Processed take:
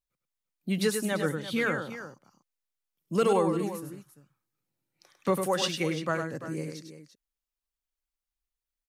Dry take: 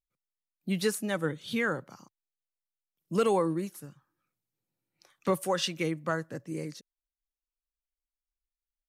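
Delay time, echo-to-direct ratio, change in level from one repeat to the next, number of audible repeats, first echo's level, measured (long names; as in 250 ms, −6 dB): 101 ms, −5.5 dB, repeats not evenly spaced, 2, −6.5 dB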